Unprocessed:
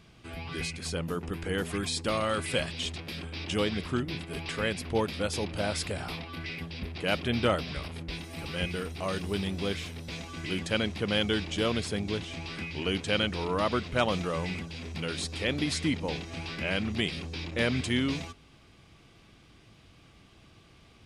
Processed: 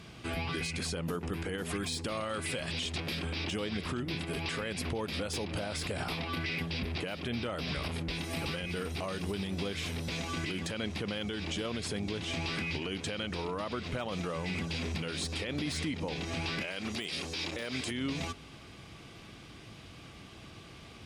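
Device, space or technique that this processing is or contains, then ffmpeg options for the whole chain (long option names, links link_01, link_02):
podcast mastering chain: -filter_complex "[0:a]asettb=1/sr,asplit=3[link_01][link_02][link_03];[link_01]atrim=end=16.614[link_04];[link_02]atrim=start=16.61:end=17.91,asetpts=PTS-STARTPTS,afade=type=in:duration=0.004:curve=qsin,afade=type=out:start_time=1.296:duration=0.004:curve=qsin,bass=frequency=250:gain=-10,treble=frequency=4000:gain=7[link_05];[link_03]atrim=start=17.906[link_06];[link_04][link_05]acrossfade=duration=0.004:curve1=hsin:curve2=qsin[link_07];[link_07][link_06]acrossfade=duration=0.004:curve1=qsin:curve2=hsin,highpass=frequency=69:poles=1,deesser=0.75,acompressor=threshold=-37dB:ratio=2,alimiter=level_in=9dB:limit=-24dB:level=0:latency=1:release=106,volume=-9dB,volume=8dB" -ar 44100 -c:a libmp3lame -b:a 112k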